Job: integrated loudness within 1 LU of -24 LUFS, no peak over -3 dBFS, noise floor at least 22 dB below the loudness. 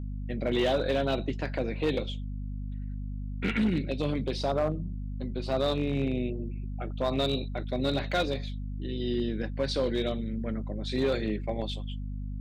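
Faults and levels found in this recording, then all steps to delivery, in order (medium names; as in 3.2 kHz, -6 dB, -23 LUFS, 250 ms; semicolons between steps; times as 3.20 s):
clipped samples 0.9%; clipping level -20.5 dBFS; hum 50 Hz; highest harmonic 250 Hz; hum level -33 dBFS; loudness -31.0 LUFS; peak level -20.5 dBFS; loudness target -24.0 LUFS
-> clip repair -20.5 dBFS; de-hum 50 Hz, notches 5; trim +7 dB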